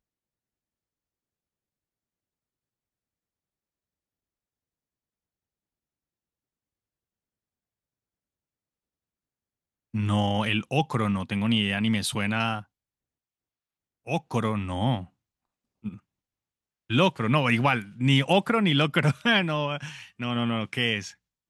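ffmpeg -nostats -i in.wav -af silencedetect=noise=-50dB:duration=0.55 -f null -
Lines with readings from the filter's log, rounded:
silence_start: 0.00
silence_end: 9.94 | silence_duration: 9.94
silence_start: 12.64
silence_end: 14.06 | silence_duration: 1.42
silence_start: 15.07
silence_end: 15.84 | silence_duration: 0.77
silence_start: 15.99
silence_end: 16.90 | silence_duration: 0.90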